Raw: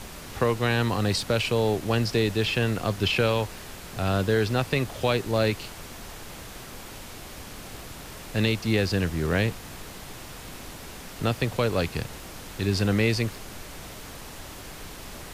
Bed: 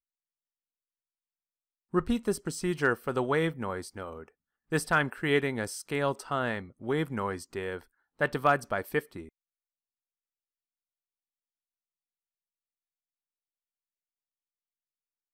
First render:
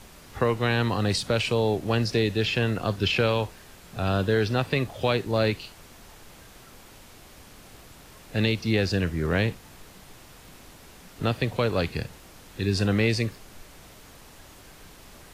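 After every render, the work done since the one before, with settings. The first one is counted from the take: noise print and reduce 8 dB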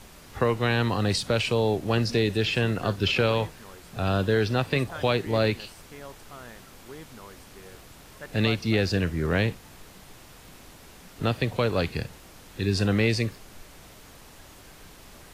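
add bed -14.5 dB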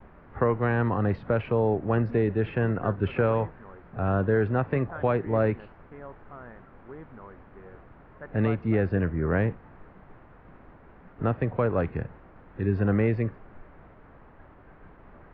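low-pass 1.7 kHz 24 dB/octave; expander -48 dBFS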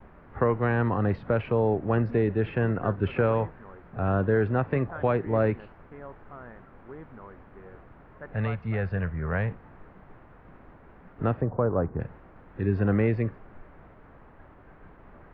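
8.33–9.51 s: peaking EQ 310 Hz -15 dB 0.94 oct; 11.41–12.00 s: low-pass 1.3 kHz 24 dB/octave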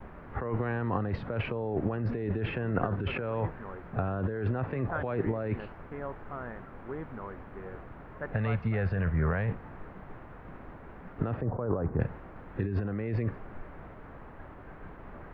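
compressor with a negative ratio -30 dBFS, ratio -1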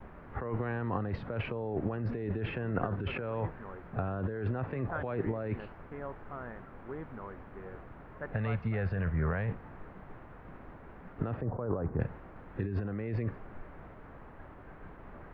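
trim -3 dB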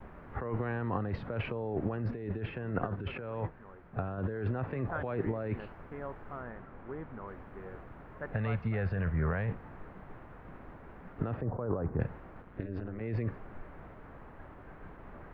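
2.11–4.18 s: upward expansion, over -43 dBFS; 6.41–7.28 s: distance through air 130 m; 12.42–13.01 s: AM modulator 190 Hz, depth 95%

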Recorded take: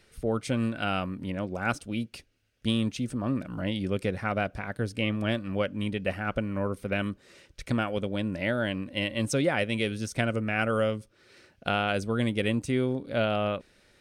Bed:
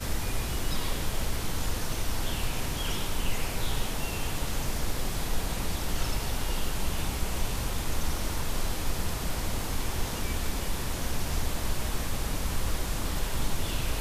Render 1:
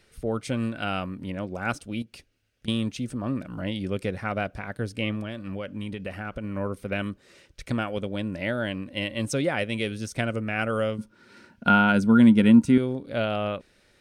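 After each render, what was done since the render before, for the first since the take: 2.02–2.68 s: compression, threshold -40 dBFS; 5.20–6.44 s: compression 10:1, threshold -28 dBFS; 10.98–12.78 s: small resonant body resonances 220/940/1400 Hz, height 16 dB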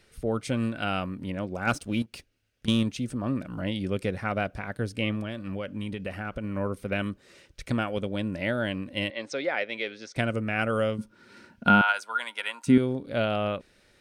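1.67–2.83 s: waveshaping leveller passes 1; 9.10–10.16 s: cabinet simulation 480–5200 Hz, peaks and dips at 1.1 kHz -4 dB, 2.1 kHz +3 dB, 2.9 kHz -6 dB; 11.81–12.67 s: high-pass 790 Hz 24 dB/octave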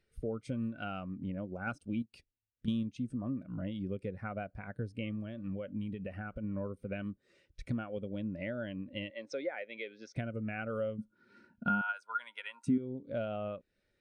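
compression 3:1, threshold -36 dBFS, peak gain reduction 16 dB; spectral contrast expander 1.5:1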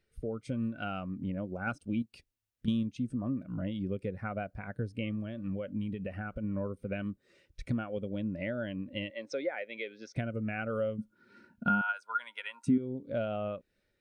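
level rider gain up to 3 dB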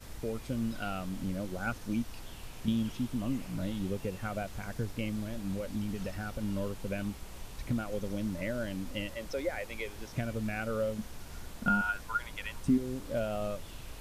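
add bed -15.5 dB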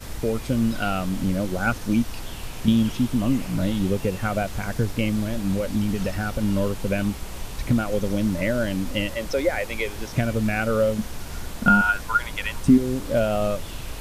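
trim +11.5 dB

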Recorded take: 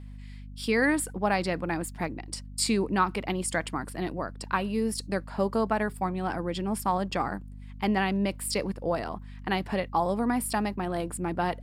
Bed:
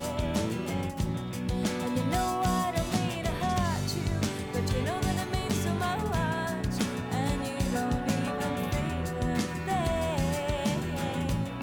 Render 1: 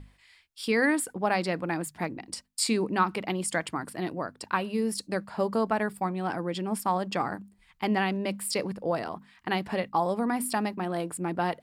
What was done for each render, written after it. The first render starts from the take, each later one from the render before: hum notches 50/100/150/200/250 Hz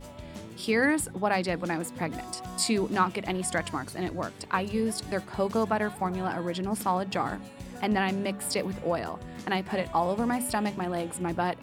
add bed -13 dB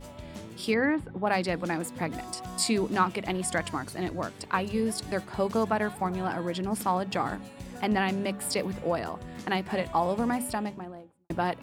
0.74–1.27 s: distance through air 410 m; 10.23–11.30 s: studio fade out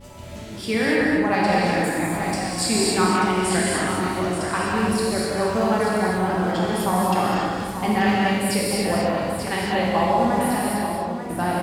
multi-tap echo 202/238/885 ms -9/-9/-8.5 dB; gated-style reverb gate 320 ms flat, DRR -5.5 dB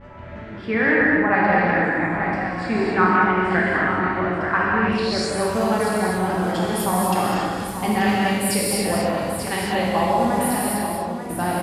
low-pass sweep 1.7 kHz -> 12 kHz, 4.81–5.45 s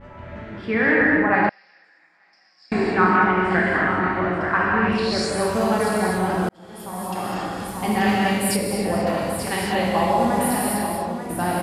1.49–2.72 s: band-pass filter 5.2 kHz, Q 13; 6.49–8.06 s: fade in; 8.56–9.07 s: treble shelf 2.2 kHz -9 dB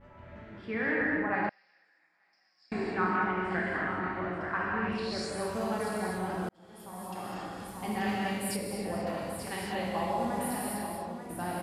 trim -12 dB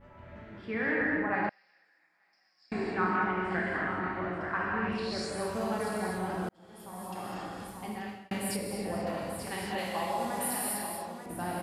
7.63–8.31 s: fade out; 9.78–11.26 s: tilt EQ +2 dB/octave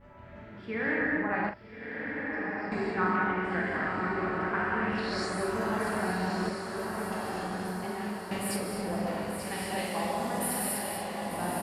doubling 44 ms -8.5 dB; echo that smears into a reverb 1254 ms, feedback 54%, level -4.5 dB

